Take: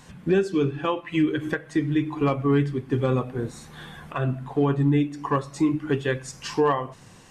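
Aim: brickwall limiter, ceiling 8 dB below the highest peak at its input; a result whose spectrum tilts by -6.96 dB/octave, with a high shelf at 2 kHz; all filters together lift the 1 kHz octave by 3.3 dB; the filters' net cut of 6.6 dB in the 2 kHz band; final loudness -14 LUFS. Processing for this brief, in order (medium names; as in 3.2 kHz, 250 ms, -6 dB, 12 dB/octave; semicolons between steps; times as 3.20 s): peaking EQ 1 kHz +7.5 dB; treble shelf 2 kHz -8.5 dB; peaking EQ 2 kHz -7 dB; trim +14 dB; peak limiter -3.5 dBFS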